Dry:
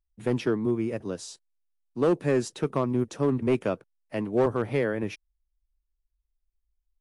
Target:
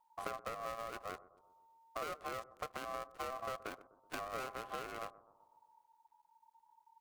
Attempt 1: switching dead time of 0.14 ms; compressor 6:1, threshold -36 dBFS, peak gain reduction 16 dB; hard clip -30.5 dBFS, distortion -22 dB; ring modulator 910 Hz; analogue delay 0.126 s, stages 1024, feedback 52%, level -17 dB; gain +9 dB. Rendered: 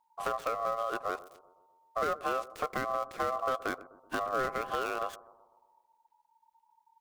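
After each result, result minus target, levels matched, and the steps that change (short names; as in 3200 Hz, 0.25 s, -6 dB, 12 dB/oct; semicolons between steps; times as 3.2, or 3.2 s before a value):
compressor: peak gain reduction -9.5 dB; switching dead time: distortion -14 dB
change: compressor 6:1, threshold -48 dBFS, peak gain reduction 26 dB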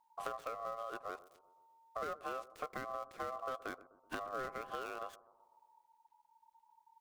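switching dead time: distortion -14 dB
change: switching dead time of 0.5 ms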